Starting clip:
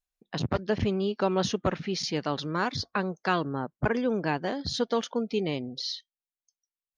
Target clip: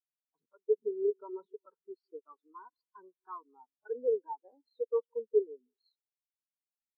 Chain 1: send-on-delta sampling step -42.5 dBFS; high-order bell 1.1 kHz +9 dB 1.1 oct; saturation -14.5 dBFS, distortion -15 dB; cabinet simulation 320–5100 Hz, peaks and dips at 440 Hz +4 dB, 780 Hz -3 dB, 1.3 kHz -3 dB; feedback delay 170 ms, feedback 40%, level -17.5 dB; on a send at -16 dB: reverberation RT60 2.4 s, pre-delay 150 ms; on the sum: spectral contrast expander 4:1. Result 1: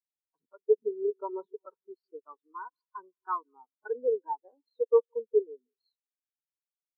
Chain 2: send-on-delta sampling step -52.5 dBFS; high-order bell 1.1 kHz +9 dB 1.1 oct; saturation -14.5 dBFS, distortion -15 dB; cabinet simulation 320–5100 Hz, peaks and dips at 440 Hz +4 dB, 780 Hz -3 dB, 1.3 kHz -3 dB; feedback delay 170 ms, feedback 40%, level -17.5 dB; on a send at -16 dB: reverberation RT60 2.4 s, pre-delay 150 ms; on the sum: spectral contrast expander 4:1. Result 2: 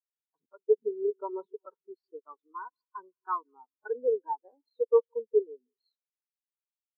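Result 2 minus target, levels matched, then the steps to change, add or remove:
saturation: distortion -7 dB
change: saturation -22.5 dBFS, distortion -8 dB

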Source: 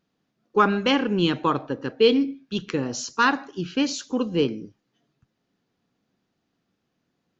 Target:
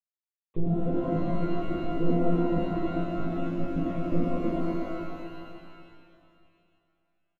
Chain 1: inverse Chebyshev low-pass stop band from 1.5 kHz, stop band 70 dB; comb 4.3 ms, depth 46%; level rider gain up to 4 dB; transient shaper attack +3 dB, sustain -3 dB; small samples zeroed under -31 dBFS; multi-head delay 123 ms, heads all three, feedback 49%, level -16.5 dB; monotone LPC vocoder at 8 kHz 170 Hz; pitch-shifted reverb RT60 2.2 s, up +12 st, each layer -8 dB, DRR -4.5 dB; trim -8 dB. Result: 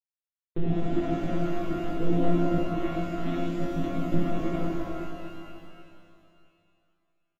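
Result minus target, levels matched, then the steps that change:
small samples zeroed: distortion +9 dB
change: small samples zeroed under -40 dBFS

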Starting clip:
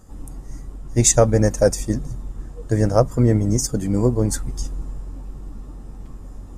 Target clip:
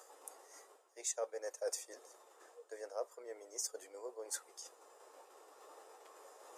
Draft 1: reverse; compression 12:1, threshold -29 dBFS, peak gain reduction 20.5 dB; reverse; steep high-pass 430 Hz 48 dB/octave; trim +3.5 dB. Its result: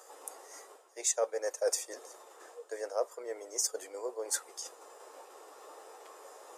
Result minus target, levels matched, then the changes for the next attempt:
compression: peak gain reduction -8.5 dB
change: compression 12:1, threshold -38.5 dBFS, peak gain reduction 29.5 dB

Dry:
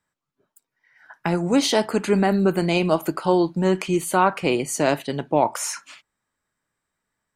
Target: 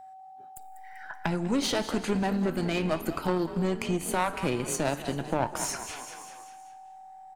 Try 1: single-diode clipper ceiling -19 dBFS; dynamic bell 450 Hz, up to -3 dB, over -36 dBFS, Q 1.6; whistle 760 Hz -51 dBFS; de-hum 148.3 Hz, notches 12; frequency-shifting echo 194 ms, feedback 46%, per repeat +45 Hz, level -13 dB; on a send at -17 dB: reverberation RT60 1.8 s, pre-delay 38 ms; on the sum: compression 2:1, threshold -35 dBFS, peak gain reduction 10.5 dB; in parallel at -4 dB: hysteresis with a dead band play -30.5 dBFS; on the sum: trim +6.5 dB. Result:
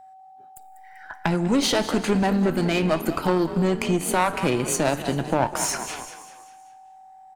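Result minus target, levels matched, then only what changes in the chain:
compression: peak gain reduction -5 dB
change: compression 2:1, threshold -45.5 dBFS, peak gain reduction 16 dB

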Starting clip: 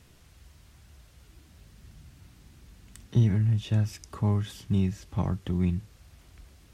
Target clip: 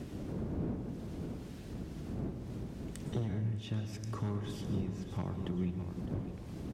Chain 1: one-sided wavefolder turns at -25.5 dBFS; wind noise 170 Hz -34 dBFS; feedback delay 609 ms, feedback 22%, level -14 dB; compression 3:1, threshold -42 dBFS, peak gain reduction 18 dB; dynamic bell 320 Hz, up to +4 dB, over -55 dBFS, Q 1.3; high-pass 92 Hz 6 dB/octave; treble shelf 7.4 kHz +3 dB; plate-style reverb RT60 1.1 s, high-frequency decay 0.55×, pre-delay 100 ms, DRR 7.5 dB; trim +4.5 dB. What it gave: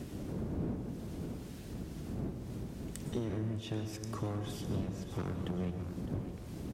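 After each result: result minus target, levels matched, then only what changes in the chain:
one-sided wavefolder: distortion +15 dB; 8 kHz band +5.0 dB
change: one-sided wavefolder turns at -17 dBFS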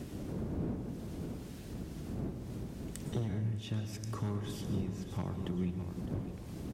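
8 kHz band +4.0 dB
change: treble shelf 7.4 kHz -5.5 dB

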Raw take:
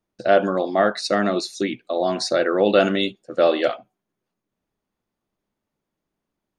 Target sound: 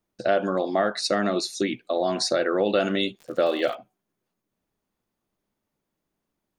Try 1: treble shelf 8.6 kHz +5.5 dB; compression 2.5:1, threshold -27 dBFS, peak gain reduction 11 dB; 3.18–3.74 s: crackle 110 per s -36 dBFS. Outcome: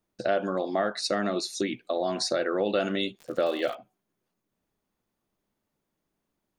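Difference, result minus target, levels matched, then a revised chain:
compression: peak gain reduction +4 dB
treble shelf 8.6 kHz +5.5 dB; compression 2.5:1, threshold -20.5 dBFS, peak gain reduction 7 dB; 3.18–3.74 s: crackle 110 per s -36 dBFS

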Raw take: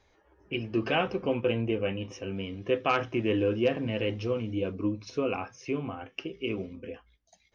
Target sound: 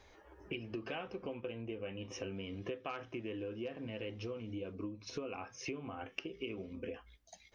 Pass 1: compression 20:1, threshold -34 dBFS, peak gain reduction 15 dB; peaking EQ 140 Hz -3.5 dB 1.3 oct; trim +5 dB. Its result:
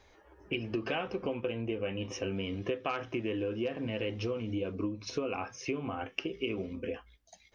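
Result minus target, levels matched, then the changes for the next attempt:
compression: peak gain reduction -8 dB
change: compression 20:1, threshold -42.5 dBFS, peak gain reduction 23 dB

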